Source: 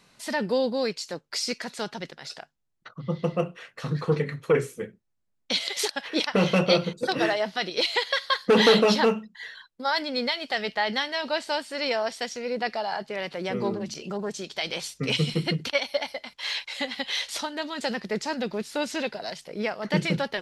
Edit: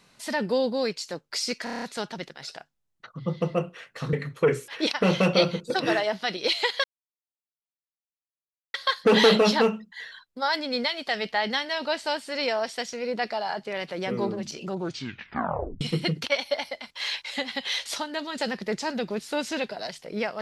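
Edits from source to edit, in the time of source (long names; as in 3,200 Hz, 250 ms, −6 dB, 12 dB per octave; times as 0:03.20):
0:01.64: stutter 0.03 s, 7 plays
0:03.95–0:04.20: remove
0:04.75–0:06.01: remove
0:08.17: splice in silence 1.90 s
0:14.10: tape stop 1.14 s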